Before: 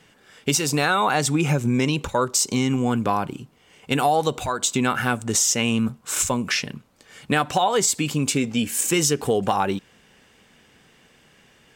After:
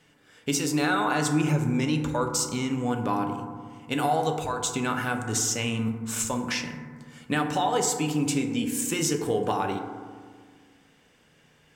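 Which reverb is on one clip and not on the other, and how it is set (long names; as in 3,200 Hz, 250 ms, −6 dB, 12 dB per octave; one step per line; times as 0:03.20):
feedback delay network reverb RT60 1.7 s, low-frequency decay 1.35×, high-frequency decay 0.3×, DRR 3.5 dB
level −7 dB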